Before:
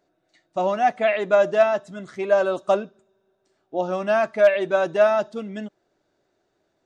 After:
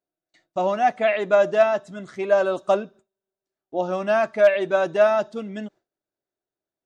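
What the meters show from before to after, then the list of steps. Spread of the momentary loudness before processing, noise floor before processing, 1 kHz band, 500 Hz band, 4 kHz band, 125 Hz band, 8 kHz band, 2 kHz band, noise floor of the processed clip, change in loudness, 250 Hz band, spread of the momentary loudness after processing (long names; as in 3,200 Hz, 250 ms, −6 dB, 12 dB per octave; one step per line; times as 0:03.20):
15 LU, −72 dBFS, 0.0 dB, 0.0 dB, 0.0 dB, 0.0 dB, can't be measured, 0.0 dB, below −85 dBFS, 0.0 dB, 0.0 dB, 15 LU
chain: noise gate with hold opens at −49 dBFS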